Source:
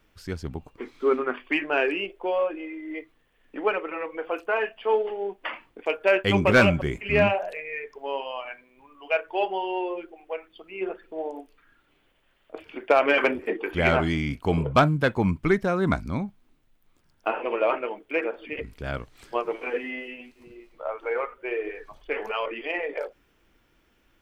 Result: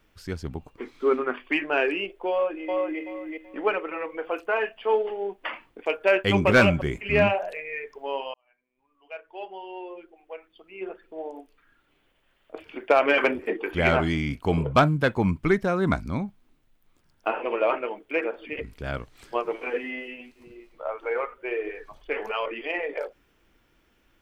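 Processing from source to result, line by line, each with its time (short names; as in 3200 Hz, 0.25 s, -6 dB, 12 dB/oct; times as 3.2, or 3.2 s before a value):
2.3–2.99 echo throw 0.38 s, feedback 25%, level -2 dB
8.34–12.65 fade in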